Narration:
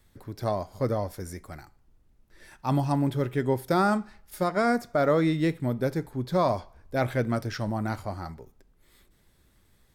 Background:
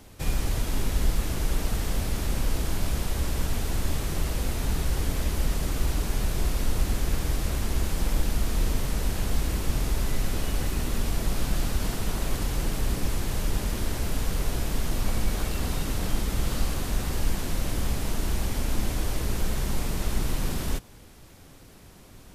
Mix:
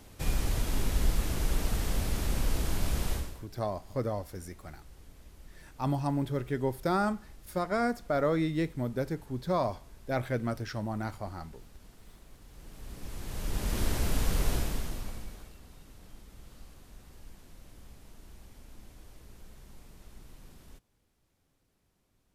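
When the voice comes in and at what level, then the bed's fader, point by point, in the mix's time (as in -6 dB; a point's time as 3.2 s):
3.15 s, -5.0 dB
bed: 3.14 s -3 dB
3.47 s -26.5 dB
12.42 s -26.5 dB
13.8 s -1 dB
14.54 s -1 dB
15.61 s -24.5 dB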